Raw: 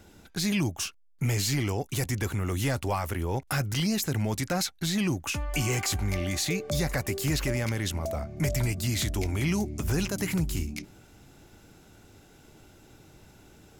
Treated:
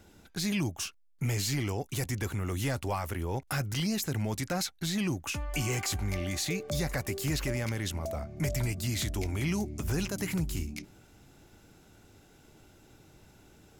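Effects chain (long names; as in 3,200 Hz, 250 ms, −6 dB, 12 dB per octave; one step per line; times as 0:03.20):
0:06.26–0:07.77: surface crackle 58 per second −41 dBFS
level −3.5 dB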